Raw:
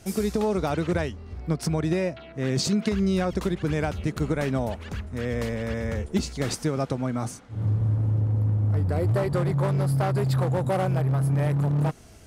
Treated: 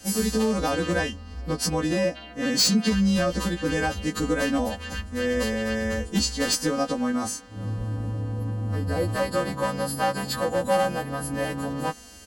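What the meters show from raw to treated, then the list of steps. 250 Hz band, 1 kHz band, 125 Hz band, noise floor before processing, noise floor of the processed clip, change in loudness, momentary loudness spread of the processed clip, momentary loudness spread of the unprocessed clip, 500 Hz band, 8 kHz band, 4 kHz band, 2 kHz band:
+1.5 dB, +3.5 dB, −7.5 dB, −46 dBFS, −42 dBFS, 0.0 dB, 8 LU, 6 LU, +1.5 dB, +8.5 dB, +9.0 dB, +6.5 dB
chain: every partial snapped to a pitch grid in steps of 2 semitones
hard clipping −17 dBFS, distortion −24 dB
comb filter 3.9 ms, depth 93%

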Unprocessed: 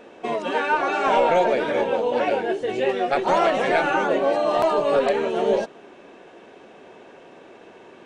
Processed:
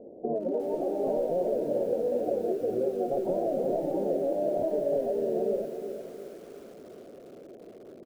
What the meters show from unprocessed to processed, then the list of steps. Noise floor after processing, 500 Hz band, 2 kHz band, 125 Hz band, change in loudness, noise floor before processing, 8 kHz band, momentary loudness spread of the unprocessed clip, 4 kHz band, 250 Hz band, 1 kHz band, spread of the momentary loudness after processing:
−48 dBFS, −6.0 dB, below −30 dB, −4.5 dB, −8.0 dB, −47 dBFS, can't be measured, 5 LU, below −25 dB, −4.0 dB, −17.0 dB, 19 LU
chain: Butterworth low-pass 650 Hz 48 dB per octave
downward compressor 10 to 1, threshold −25 dBFS, peak gain reduction 10 dB
single-tap delay 452 ms −15 dB
feedback echo at a low word length 360 ms, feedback 55%, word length 8 bits, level −10.5 dB

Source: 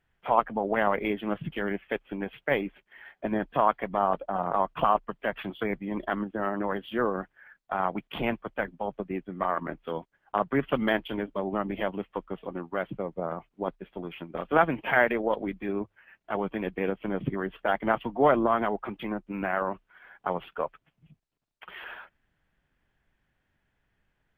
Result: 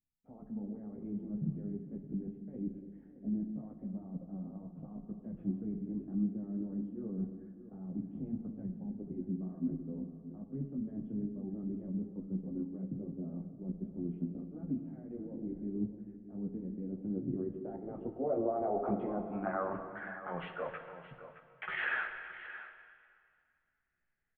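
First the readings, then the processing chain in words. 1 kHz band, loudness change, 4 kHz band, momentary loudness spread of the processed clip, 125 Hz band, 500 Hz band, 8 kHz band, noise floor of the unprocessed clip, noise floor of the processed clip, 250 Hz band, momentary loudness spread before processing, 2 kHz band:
−17.0 dB, −10.0 dB, below −15 dB, 11 LU, −2.0 dB, −13.0 dB, can't be measured, −77 dBFS, −74 dBFS, −4.0 dB, 12 LU, −11.5 dB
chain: noise gate with hold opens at −47 dBFS
parametric band 4,100 Hz +12 dB 0.27 octaves
notch filter 990 Hz, Q 7.1
reversed playback
downward compressor 16 to 1, threshold −38 dBFS, peak gain reduction 23 dB
reversed playback
brickwall limiter −34 dBFS, peak gain reduction 8.5 dB
multi-voice chorus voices 6, 0.44 Hz, delay 15 ms, depth 4.5 ms
low-pass filter sweep 230 Hz → 2,000 Hz, 0:16.78–0:20.54
on a send: single-tap delay 620 ms −13.5 dB
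on the sum: dense smooth reverb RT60 2.2 s, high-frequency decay 0.9×, DRR 6 dB
level +7 dB

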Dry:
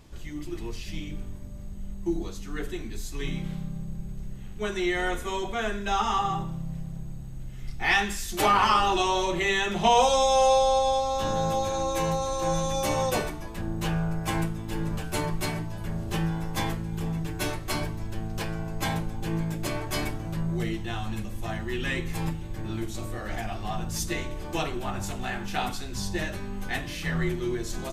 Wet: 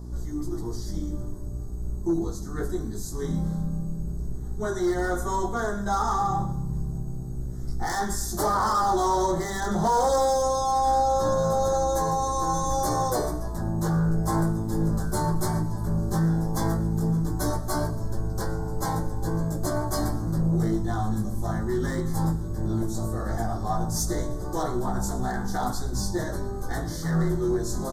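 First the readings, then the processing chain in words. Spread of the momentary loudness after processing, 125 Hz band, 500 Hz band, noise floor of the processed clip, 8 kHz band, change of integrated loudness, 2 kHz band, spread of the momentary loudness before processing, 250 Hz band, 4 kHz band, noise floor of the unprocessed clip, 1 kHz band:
10 LU, +5.0 dB, +1.0 dB, −32 dBFS, +2.0 dB, +1.5 dB, −6.5 dB, 15 LU, +4.0 dB, −7.5 dB, −37 dBFS, +1.0 dB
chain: dynamic equaliser 2,000 Hz, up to +4 dB, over −40 dBFS, Q 0.86
in parallel at +2.5 dB: brickwall limiter −20 dBFS, peak gain reduction 13 dB
on the sum: chorus effect 0.16 Hz, delay 16 ms, depth 3.1 ms
hum with harmonics 60 Hz, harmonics 7, −37 dBFS −7 dB per octave
hard clipping −18 dBFS, distortion −15 dB
Butterworth band-reject 2,600 Hz, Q 0.7
on a send: repeating echo 114 ms, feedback 44%, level −19 dB

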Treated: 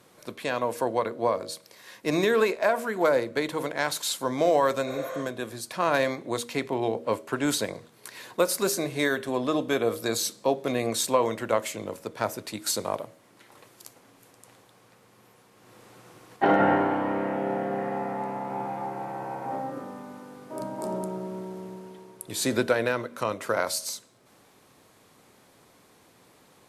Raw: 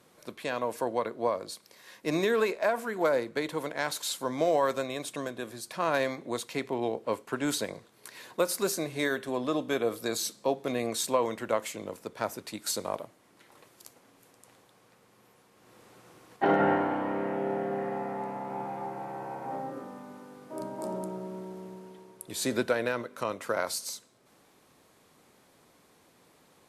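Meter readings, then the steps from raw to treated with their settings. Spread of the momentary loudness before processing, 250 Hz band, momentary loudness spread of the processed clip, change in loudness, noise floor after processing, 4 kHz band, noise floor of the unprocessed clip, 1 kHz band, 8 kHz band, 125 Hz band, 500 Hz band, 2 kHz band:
14 LU, +3.5 dB, 14 LU, +3.5 dB, −59 dBFS, +4.0 dB, −63 dBFS, +4.0 dB, +4.0 dB, +4.5 dB, +3.5 dB, +4.0 dB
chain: parametric band 110 Hz +4.5 dB 0.29 octaves
hum removal 79.57 Hz, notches 8
healed spectral selection 0:04.89–0:05.19, 450–11,000 Hz both
level +4 dB

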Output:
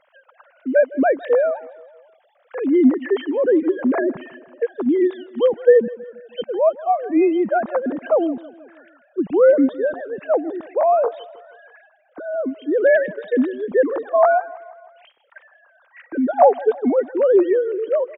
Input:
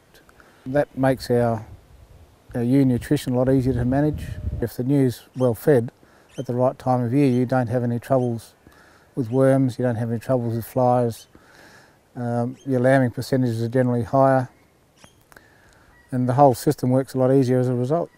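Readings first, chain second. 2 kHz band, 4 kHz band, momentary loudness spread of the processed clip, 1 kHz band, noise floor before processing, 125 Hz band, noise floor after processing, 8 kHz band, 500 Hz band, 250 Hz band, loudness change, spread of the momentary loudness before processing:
+4.5 dB, can't be measured, 15 LU, +2.0 dB, −57 dBFS, below −25 dB, −59 dBFS, below −40 dB, +4.5 dB, +0.5 dB, +2.5 dB, 12 LU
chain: three sine waves on the formant tracks
on a send: repeating echo 160 ms, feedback 56%, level −20 dB
on the sum: level +2 dB

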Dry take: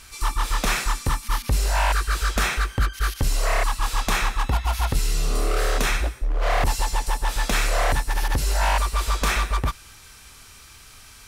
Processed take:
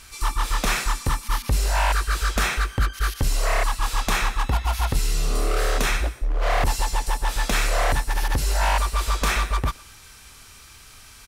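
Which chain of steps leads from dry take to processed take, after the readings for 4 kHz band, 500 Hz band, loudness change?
0.0 dB, 0.0 dB, 0.0 dB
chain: far-end echo of a speakerphone 120 ms, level −22 dB

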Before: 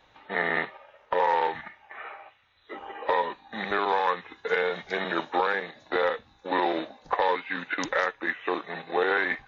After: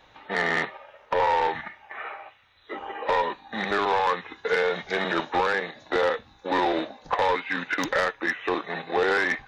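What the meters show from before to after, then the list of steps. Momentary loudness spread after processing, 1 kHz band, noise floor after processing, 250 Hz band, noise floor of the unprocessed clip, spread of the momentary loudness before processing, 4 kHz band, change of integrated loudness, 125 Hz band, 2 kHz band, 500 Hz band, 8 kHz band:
13 LU, +1.5 dB, −56 dBFS, +3.0 dB, −61 dBFS, 15 LU, +3.5 dB, +2.0 dB, +5.0 dB, +2.0 dB, +2.0 dB, can't be measured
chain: soft clipping −20.5 dBFS, distortion −13 dB
level +4.5 dB

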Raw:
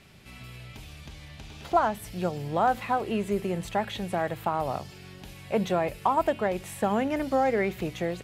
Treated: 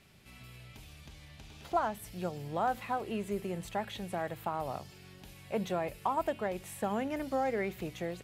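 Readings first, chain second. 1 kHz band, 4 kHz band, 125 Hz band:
−7.5 dB, −7.0 dB, −7.5 dB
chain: high-shelf EQ 8,500 Hz +5.5 dB
level −7.5 dB

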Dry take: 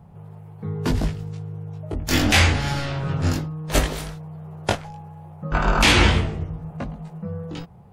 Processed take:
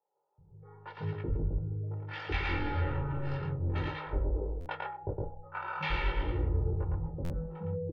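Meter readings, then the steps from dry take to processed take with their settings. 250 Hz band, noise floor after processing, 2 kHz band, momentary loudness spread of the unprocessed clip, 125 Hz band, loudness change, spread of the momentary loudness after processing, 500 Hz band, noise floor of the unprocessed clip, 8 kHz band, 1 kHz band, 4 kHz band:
−14.5 dB, −64 dBFS, −15.0 dB, 20 LU, −9.0 dB, −13.0 dB, 7 LU, −10.0 dB, −46 dBFS, below −35 dB, −11.5 dB, −21.5 dB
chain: Gaussian smoothing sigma 2.9 samples
hum removal 233.2 Hz, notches 31
on a send: single-tap delay 112 ms −4.5 dB
on the sum: noise reduction from a noise print of the clip's start 13 dB
low-pass that shuts in the quiet parts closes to 400 Hz, open at −14.5 dBFS
reversed playback
downward compressor 4 to 1, threshold −33 dBFS, peak gain reduction 18 dB
reversed playback
comb filter 2.2 ms, depth 81%
multiband delay without the direct sound highs, lows 380 ms, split 630 Hz
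buffer that repeats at 0:04.60/0:07.24, samples 512, times 4

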